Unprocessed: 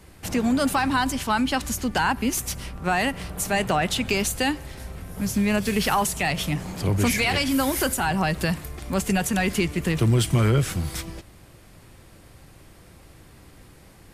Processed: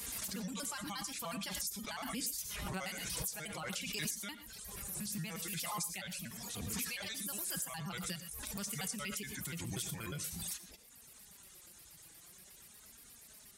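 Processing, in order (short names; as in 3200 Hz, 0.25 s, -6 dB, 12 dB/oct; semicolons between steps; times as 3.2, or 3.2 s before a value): trilling pitch shifter -5 st, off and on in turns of 62 ms; HPF 43 Hz; pre-emphasis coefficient 0.9; reverb removal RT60 0.84 s; dynamic EQ 170 Hz, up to +6 dB, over -58 dBFS, Q 2.3; compressor 2.5:1, threshold -49 dBFS, peak gain reduction 16.5 dB; hard clip -30 dBFS, distortion -41 dB; flange 0.44 Hz, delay 4.3 ms, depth 2.2 ms, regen +31%; speed mistake 24 fps film run at 25 fps; reverb, pre-delay 3 ms, DRR 11.5 dB; backwards sustainer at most 22 dB/s; gain +7.5 dB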